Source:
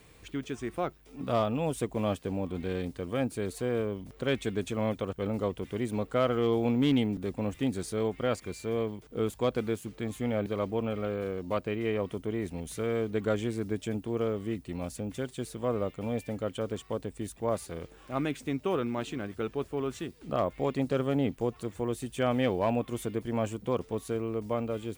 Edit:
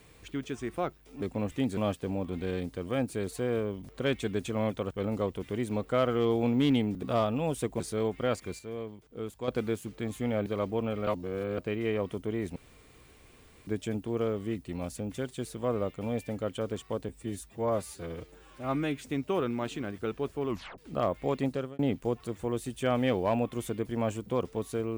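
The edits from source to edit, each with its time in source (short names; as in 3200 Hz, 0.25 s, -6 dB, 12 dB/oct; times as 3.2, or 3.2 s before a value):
1.22–1.99 swap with 7.25–7.8
8.59–9.48 gain -7.5 dB
11.07–11.58 reverse
12.56–13.67 room tone
17.09–18.37 stretch 1.5×
19.84 tape stop 0.30 s
20.81–21.15 fade out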